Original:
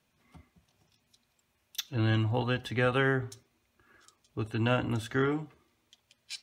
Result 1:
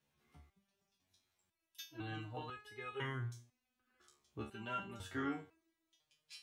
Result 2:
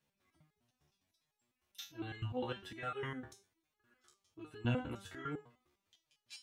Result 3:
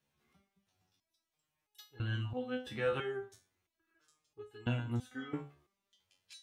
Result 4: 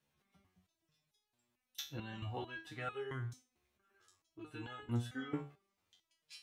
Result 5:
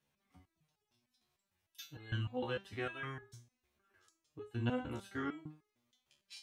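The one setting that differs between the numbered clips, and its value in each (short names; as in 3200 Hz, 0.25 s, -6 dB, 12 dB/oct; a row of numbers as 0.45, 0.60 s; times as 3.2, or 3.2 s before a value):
stepped resonator, rate: 2, 9.9, 3, 4.5, 6.6 Hz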